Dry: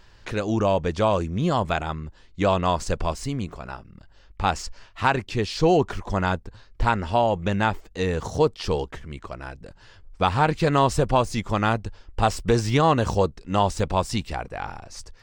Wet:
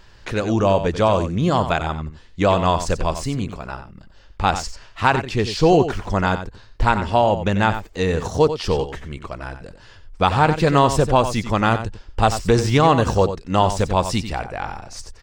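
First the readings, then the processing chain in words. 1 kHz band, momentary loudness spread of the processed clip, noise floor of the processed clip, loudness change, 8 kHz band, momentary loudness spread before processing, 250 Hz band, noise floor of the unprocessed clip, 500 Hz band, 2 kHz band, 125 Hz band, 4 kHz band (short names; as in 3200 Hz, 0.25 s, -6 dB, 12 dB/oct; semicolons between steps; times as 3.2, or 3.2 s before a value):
+4.5 dB, 16 LU, -46 dBFS, +4.5 dB, +4.5 dB, 15 LU, +4.5 dB, -52 dBFS, +4.5 dB, +4.5 dB, +4.5 dB, +4.5 dB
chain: echo 91 ms -10.5 dB; gain +4 dB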